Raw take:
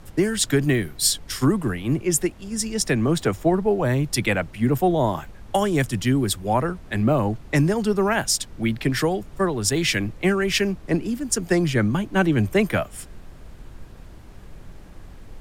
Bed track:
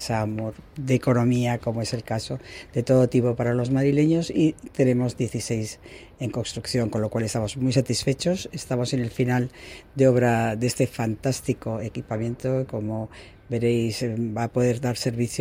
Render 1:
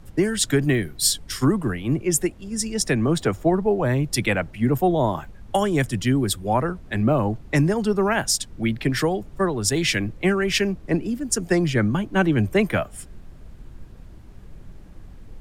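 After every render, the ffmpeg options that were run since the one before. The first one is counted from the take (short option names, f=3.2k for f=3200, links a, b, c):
-af "afftdn=nr=6:nf=-43"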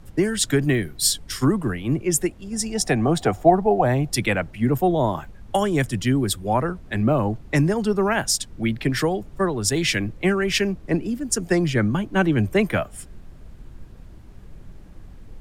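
-filter_complex "[0:a]asettb=1/sr,asplit=3[a][b][c];[a]atrim=end=2.534[d];[b]atrim=start=2.53:end=4.1,asetpts=PTS-STARTPTS,afade=t=in:d=0.004:c=qsin,afade=t=out:st=1.566:d=0.004:c=qsin,equalizer=f=740:t=o:w=0.32:g=14[e];[c]atrim=start=4.096[f];[d][e]acrossfade=d=0.004:c1=hsin:c2=qsin[g];[g][f]acrossfade=d=0.004:c1=qsin:c2=hsin"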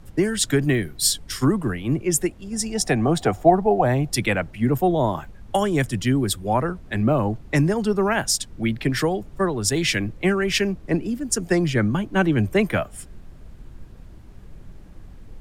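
-af anull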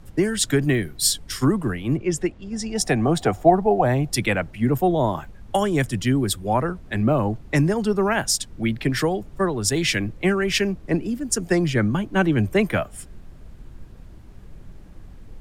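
-filter_complex "[0:a]asettb=1/sr,asplit=3[a][b][c];[a]atrim=end=1.974[d];[b]atrim=start=1.97:end=2.76,asetpts=PTS-STARTPTS,afade=t=in:d=0.004:c=qsin,afade=t=out:st=0.786:d=0.004:c=qsin,lowpass=4.9k[e];[c]atrim=start=2.756[f];[d][e]acrossfade=d=0.004:c1=hsin:c2=qsin[g];[g][f]acrossfade=d=0.004:c1=qsin:c2=hsin"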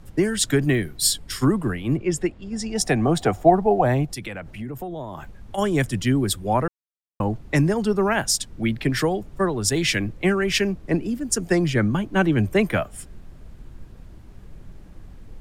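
-filter_complex "[0:a]asettb=1/sr,asplit=3[a][b][c];[a]atrim=end=1.044[d];[b]atrim=start=1.04:end=2.61,asetpts=PTS-STARTPTS,afade=t=in:d=0.004:c=qsin,afade=t=out:st=1.566:d=0.004:c=qsin,bandreject=f=6k:w=12[e];[c]atrim=start=2.606[f];[d][e]acrossfade=d=0.004:c1=hsin:c2=qsin[g];[g][f]acrossfade=d=0.004:c1=qsin:c2=hsin,asplit=3[h][i][j];[h]afade=t=out:st=4.05:d=0.02[k];[i]acompressor=threshold=-29dB:ratio=6:attack=3.2:release=140:knee=1:detection=peak,afade=t=in:st=4.05:d=0.02,afade=t=out:st=5.57:d=0.02[l];[j]afade=t=in:st=5.57:d=0.02[m];[k][l][m]amix=inputs=3:normalize=0,asplit=3[n][o][p];[n]atrim=end=6.68,asetpts=PTS-STARTPTS,afade=t=out:st=6.676:d=0.004:c=hsin[q];[o]atrim=start=6.68:end=7.2,asetpts=PTS-STARTPTS,volume=0[r];[p]atrim=start=7.2,asetpts=PTS-STARTPTS,afade=t=in:d=0.004:c=hsin[s];[q][r][s]concat=n=3:v=0:a=1"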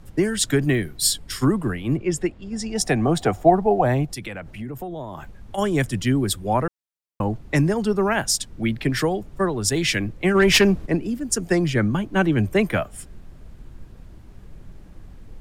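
-filter_complex "[0:a]asplit=3[a][b][c];[a]afade=t=out:st=10.34:d=0.02[d];[b]aeval=exprs='0.335*sin(PI/2*1.58*val(0)/0.335)':c=same,afade=t=in:st=10.34:d=0.02,afade=t=out:st=10.85:d=0.02[e];[c]afade=t=in:st=10.85:d=0.02[f];[d][e][f]amix=inputs=3:normalize=0"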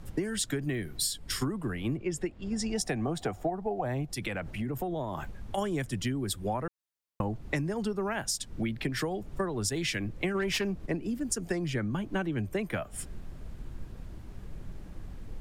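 -af "acompressor=threshold=-28dB:ratio=12"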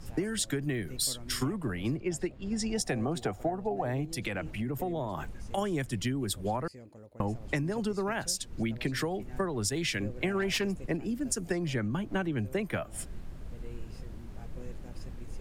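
-filter_complex "[1:a]volume=-26.5dB[a];[0:a][a]amix=inputs=2:normalize=0"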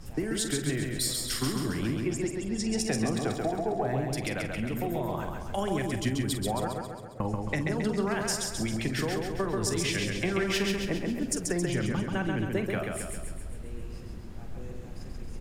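-filter_complex "[0:a]asplit=2[a][b];[b]adelay=46,volume=-11dB[c];[a][c]amix=inputs=2:normalize=0,aecho=1:1:135|270|405|540|675|810|945|1080:0.668|0.368|0.202|0.111|0.0612|0.0336|0.0185|0.0102"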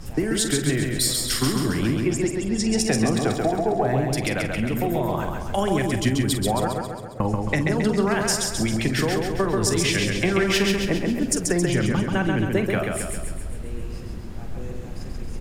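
-af "volume=7.5dB"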